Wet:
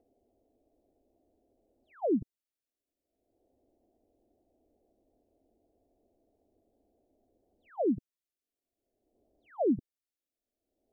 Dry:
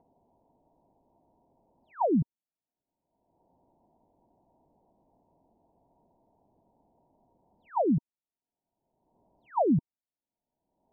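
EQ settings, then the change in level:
phaser with its sweep stopped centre 390 Hz, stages 4
0.0 dB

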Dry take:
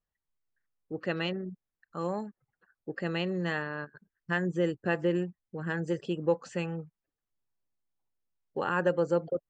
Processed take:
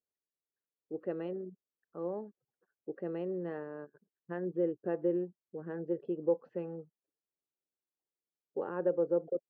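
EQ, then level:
resonant band-pass 420 Hz, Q 1.7
high-frequency loss of the air 270 metres
0.0 dB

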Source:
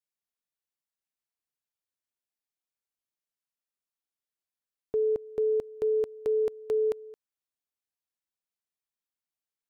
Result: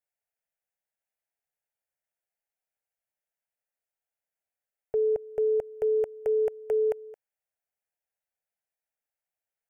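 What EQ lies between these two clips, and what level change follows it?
parametric band 790 Hz +8 dB 2.3 octaves
phaser with its sweep stopped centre 1,100 Hz, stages 6
0.0 dB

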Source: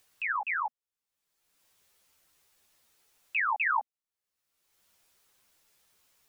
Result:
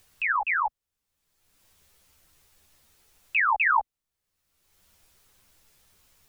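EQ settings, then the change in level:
low-shelf EQ 64 Hz +7 dB
low-shelf EQ 180 Hz +11 dB
+5.5 dB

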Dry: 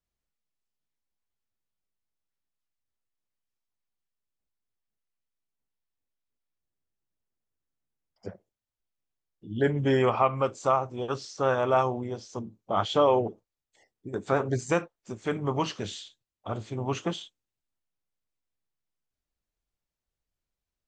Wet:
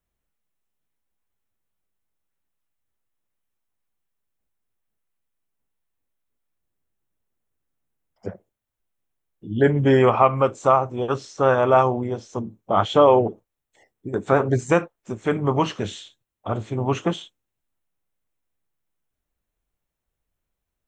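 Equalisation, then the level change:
parametric band 5,100 Hz −7 dB 1.5 octaves
notch filter 4,700 Hz, Q 9.7
+7.5 dB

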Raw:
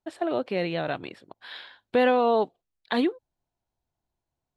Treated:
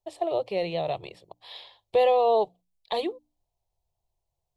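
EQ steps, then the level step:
low-shelf EQ 83 Hz +6 dB
mains-hum notches 60/120/180/240/300 Hz
phaser with its sweep stopped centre 630 Hz, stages 4
+2.0 dB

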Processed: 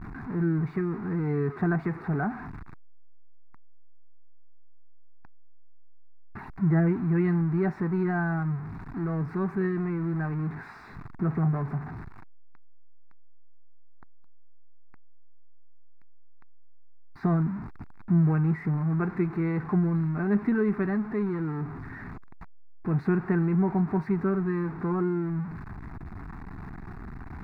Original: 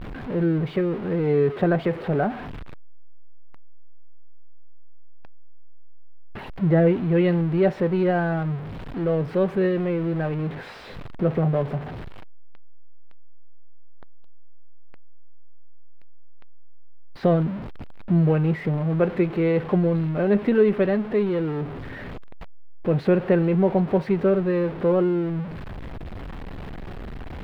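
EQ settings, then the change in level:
low-shelf EQ 66 Hz −8.5 dB
high-shelf EQ 3,600 Hz −10 dB
phaser with its sweep stopped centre 1,300 Hz, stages 4
0.0 dB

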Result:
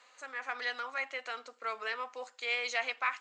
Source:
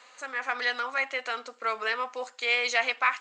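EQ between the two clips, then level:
high-pass filter 220 Hz
−7.5 dB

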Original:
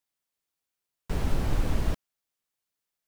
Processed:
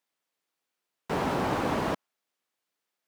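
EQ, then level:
high-pass filter 220 Hz 12 dB per octave
high-shelf EQ 5,000 Hz −9.5 dB
dynamic equaliser 950 Hz, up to +6 dB, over −54 dBFS, Q 1.2
+6.5 dB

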